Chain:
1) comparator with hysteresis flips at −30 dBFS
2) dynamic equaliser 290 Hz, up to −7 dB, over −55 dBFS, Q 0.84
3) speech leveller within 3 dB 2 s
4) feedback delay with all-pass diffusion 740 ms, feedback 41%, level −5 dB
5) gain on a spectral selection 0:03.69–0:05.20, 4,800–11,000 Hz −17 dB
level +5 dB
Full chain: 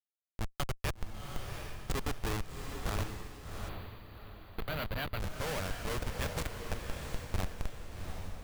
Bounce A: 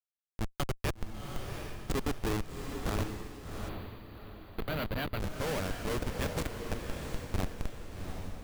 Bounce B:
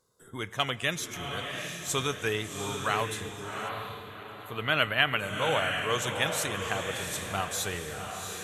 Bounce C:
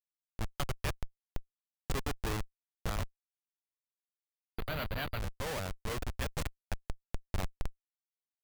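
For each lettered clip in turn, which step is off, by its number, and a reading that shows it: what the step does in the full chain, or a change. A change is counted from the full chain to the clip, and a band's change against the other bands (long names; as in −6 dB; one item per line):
2, 250 Hz band +5.0 dB
1, change in crest factor +9.0 dB
4, change in momentary loudness spread +3 LU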